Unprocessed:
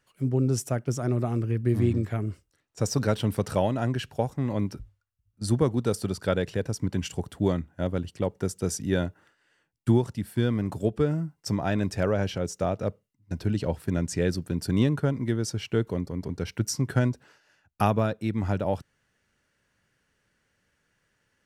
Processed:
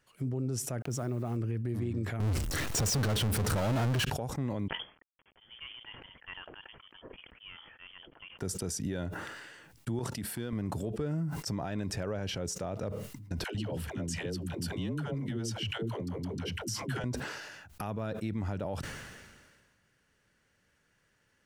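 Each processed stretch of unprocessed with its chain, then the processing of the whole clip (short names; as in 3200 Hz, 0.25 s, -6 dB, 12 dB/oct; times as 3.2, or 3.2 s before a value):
0.82–1.37 level-crossing sampler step -49.5 dBFS + mismatched tape noise reduction decoder only
2.2–4.05 low shelf 99 Hz +11.5 dB + power-law curve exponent 0.35
4.68–8.39 G.711 law mismatch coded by A + differentiator + inverted band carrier 3300 Hz
9.99–10.53 HPF 190 Hz 6 dB/oct + compressor 10:1, threshold -32 dBFS
13.44–17.04 bell 3000 Hz +11.5 dB 0.21 oct + compressor 4:1, threshold -32 dBFS + dispersion lows, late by 0.106 s, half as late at 430 Hz
whole clip: compressor, threshold -28 dBFS; limiter -25 dBFS; sustainer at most 35 dB/s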